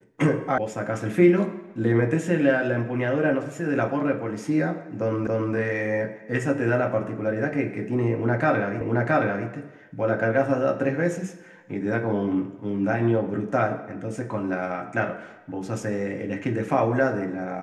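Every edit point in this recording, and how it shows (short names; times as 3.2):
0.58 sound cut off
5.27 repeat of the last 0.28 s
8.81 repeat of the last 0.67 s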